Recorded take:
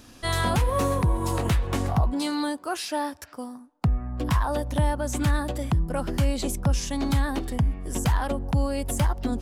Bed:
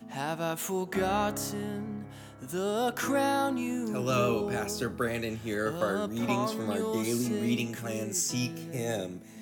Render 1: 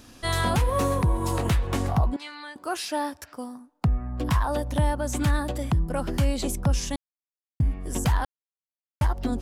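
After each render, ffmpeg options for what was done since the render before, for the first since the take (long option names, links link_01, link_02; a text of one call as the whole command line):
ffmpeg -i in.wav -filter_complex "[0:a]asettb=1/sr,asplit=3[link_01][link_02][link_03];[link_01]atrim=end=2.164[link_04];[link_02]atrim=start=2.16:end=2.56,asetpts=PTS-STARTPTS,afade=type=in:duration=0.004:curve=qsin,afade=type=out:start_time=0.396:duration=0.004:curve=qsin,bandpass=frequency=2100:width_type=q:width=1.7[link_05];[link_03]atrim=start=2.556[link_06];[link_04][link_05]acrossfade=duration=0.004:curve1=hsin:curve2=qsin[link_07];[link_07][link_06]acrossfade=duration=0.004:curve1=qsin:curve2=hsin,asplit=5[link_08][link_09][link_10][link_11][link_12];[link_08]atrim=end=6.96,asetpts=PTS-STARTPTS,afade=type=out:start_time=6.956:duration=0.004:curve=hsin[link_13];[link_09]atrim=start=6.96:end=7.6,asetpts=PTS-STARTPTS,volume=0[link_14];[link_10]atrim=start=7.6:end=8.25,asetpts=PTS-STARTPTS,afade=type=in:duration=0.004:curve=hsin,afade=type=out:start_time=0.646:duration=0.004:curve=hsin[link_15];[link_11]atrim=start=8.25:end=9.01,asetpts=PTS-STARTPTS,volume=0[link_16];[link_12]atrim=start=9.01,asetpts=PTS-STARTPTS,afade=type=in:duration=0.004:curve=hsin[link_17];[link_13][link_14][link_15][link_16][link_17]concat=n=5:v=0:a=1" out.wav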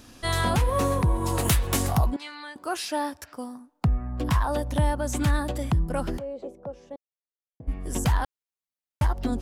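ffmpeg -i in.wav -filter_complex "[0:a]asettb=1/sr,asplit=3[link_01][link_02][link_03];[link_01]atrim=end=1.384[link_04];[link_02]atrim=start=1.38:end=2.11,asetpts=PTS-STARTPTS,afade=type=in:duration=0.004:curve=qsin,afade=type=out:start_time=0.726:duration=0.004:curve=qsin,aemphasis=mode=production:type=75kf[link_05];[link_03]atrim=start=2.106[link_06];[link_04][link_05]acrossfade=duration=0.004:curve1=hsin:curve2=qsin[link_07];[link_07][link_06]acrossfade=duration=0.004:curve1=qsin:curve2=hsin,asplit=3[link_08][link_09][link_10];[link_08]afade=type=out:start_time=6.17:duration=0.02[link_11];[link_09]bandpass=frequency=520:width_type=q:width=3.2,afade=type=in:start_time=6.17:duration=0.02,afade=type=out:start_time=7.67:duration=0.02[link_12];[link_10]afade=type=in:start_time=7.67:duration=0.02[link_13];[link_11][link_12][link_13]amix=inputs=3:normalize=0" out.wav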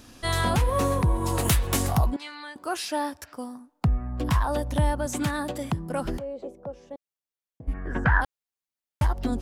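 ffmpeg -i in.wav -filter_complex "[0:a]asettb=1/sr,asplit=3[link_01][link_02][link_03];[link_01]atrim=end=5.064[link_04];[link_02]atrim=start=5.06:end=6.05,asetpts=PTS-STARTPTS,afade=type=in:duration=0.004:curve=qsin,afade=type=out:start_time=0.986:duration=0.004:curve=qsin,highpass=140[link_05];[link_03]atrim=start=6.046[link_06];[link_04][link_05]acrossfade=duration=0.004:curve1=hsin:curve2=qsin[link_07];[link_07][link_06]acrossfade=duration=0.004:curve1=qsin:curve2=hsin,asplit=3[link_08][link_09][link_10];[link_08]afade=type=out:start_time=7.73:duration=0.02[link_11];[link_09]lowpass=frequency=1600:width_type=q:width=7.9,afade=type=in:start_time=7.73:duration=0.02,afade=type=out:start_time=8.2:duration=0.02[link_12];[link_10]afade=type=in:start_time=8.2:duration=0.02[link_13];[link_11][link_12][link_13]amix=inputs=3:normalize=0" out.wav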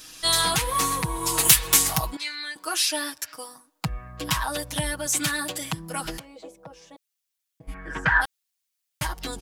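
ffmpeg -i in.wav -af "tiltshelf=frequency=1300:gain=-9.5,aecho=1:1:6.3:0.99" out.wav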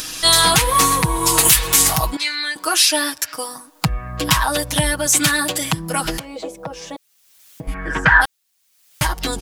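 ffmpeg -i in.wav -filter_complex "[0:a]asplit=2[link_01][link_02];[link_02]acompressor=mode=upward:threshold=-26dB:ratio=2.5,volume=0.5dB[link_03];[link_01][link_03]amix=inputs=2:normalize=0,alimiter=level_in=3dB:limit=-1dB:release=50:level=0:latency=1" out.wav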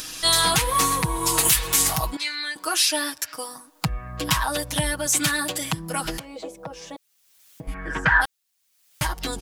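ffmpeg -i in.wav -af "volume=-6dB" out.wav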